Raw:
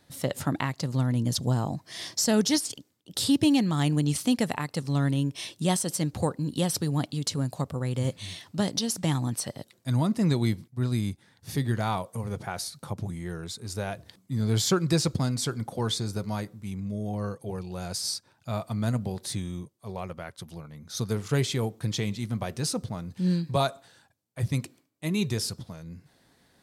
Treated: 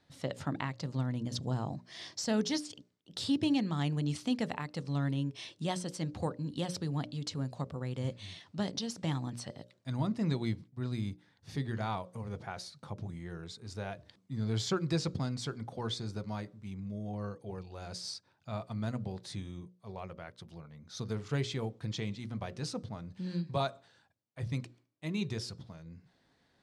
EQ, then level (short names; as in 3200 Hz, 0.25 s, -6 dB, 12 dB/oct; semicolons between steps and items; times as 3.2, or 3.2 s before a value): LPF 5300 Hz 12 dB/oct; notches 60/120/180/240/300/360/420/480/540/600 Hz; -7.0 dB